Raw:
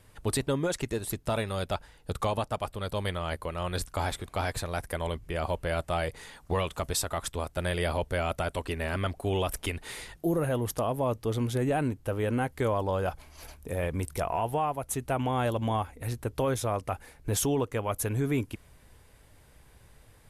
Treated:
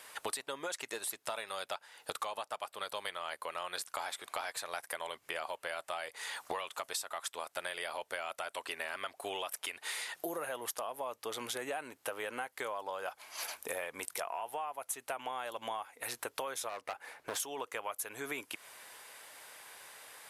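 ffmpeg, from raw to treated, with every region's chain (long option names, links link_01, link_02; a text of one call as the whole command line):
ffmpeg -i in.wav -filter_complex "[0:a]asettb=1/sr,asplit=3[link_01][link_02][link_03];[link_01]atrim=end=16.694[link_04];[link_02]atrim=start=16.69:end=17.4,asetpts=PTS-STARTPTS,afade=type=in:duration=0.004:curve=qsin,afade=type=out:start_time=0.706:duration=0.004:curve=qsin,highshelf=frequency=3400:gain=-12,asoftclip=type=hard:threshold=-29.5dB[link_05];[link_03]atrim=start=17.396[link_06];[link_04][link_05]acrossfade=duration=0.004:curve1=hsin:curve2=qsin[link_07];[link_07][link_06]acrossfade=duration=0.004:curve1=qsin:curve2=hsin,highpass=820,acompressor=threshold=-47dB:ratio=12,volume=11.5dB" out.wav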